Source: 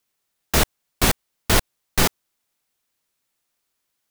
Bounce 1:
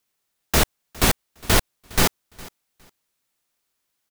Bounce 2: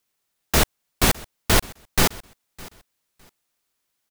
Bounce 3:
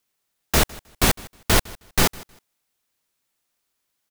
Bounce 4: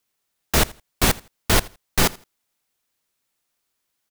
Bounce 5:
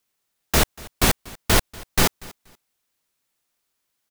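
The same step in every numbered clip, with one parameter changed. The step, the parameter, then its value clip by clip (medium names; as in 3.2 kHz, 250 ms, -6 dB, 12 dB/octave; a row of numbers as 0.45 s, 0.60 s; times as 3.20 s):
feedback delay, time: 410 ms, 609 ms, 157 ms, 82 ms, 239 ms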